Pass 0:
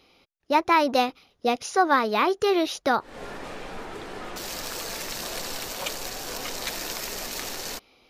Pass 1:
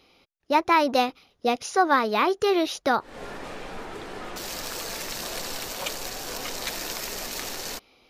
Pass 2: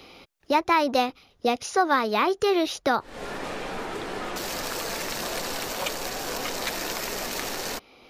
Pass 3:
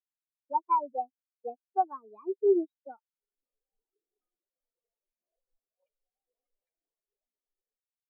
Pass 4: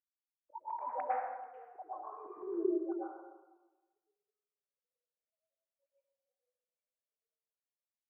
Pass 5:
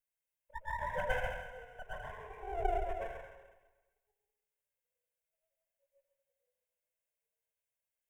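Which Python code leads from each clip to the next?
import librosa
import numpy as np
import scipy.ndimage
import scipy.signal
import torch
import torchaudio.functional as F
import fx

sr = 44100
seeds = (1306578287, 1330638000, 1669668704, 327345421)

y1 = x
y2 = fx.band_squash(y1, sr, depth_pct=40)
y3 = fx.spectral_expand(y2, sr, expansion=4.0)
y3 = y3 * librosa.db_to_amplitude(-7.0)
y4 = fx.sine_speech(y3, sr)
y4 = fx.auto_swell(y4, sr, attack_ms=298.0)
y4 = fx.rev_plate(y4, sr, seeds[0], rt60_s=1.2, hf_ratio=0.6, predelay_ms=95, drr_db=-8.0)
y4 = y4 * librosa.db_to_amplitude(-6.0)
y5 = fx.lower_of_two(y4, sr, delay_ms=1.9)
y5 = fx.fixed_phaser(y5, sr, hz=1200.0, stages=6)
y5 = y5 + 10.0 ** (-7.0 / 20.0) * np.pad(y5, (int(136 * sr / 1000.0), 0))[:len(y5)]
y5 = y5 * librosa.db_to_amplitude(6.0)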